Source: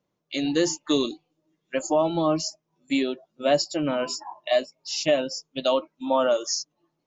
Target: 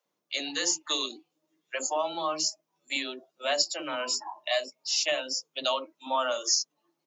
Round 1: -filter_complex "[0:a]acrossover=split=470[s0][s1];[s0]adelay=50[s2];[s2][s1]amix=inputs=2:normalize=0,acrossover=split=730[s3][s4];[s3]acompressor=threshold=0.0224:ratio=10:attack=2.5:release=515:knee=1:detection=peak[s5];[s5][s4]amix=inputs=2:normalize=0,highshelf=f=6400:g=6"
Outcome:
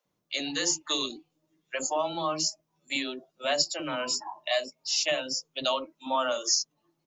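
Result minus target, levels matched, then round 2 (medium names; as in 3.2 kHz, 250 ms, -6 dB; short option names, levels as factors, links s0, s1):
250 Hz band +4.0 dB
-filter_complex "[0:a]acrossover=split=470[s0][s1];[s0]adelay=50[s2];[s2][s1]amix=inputs=2:normalize=0,acrossover=split=730[s3][s4];[s3]acompressor=threshold=0.0224:ratio=10:attack=2.5:release=515:knee=1:detection=peak,highpass=300[s5];[s5][s4]amix=inputs=2:normalize=0,highshelf=f=6400:g=6"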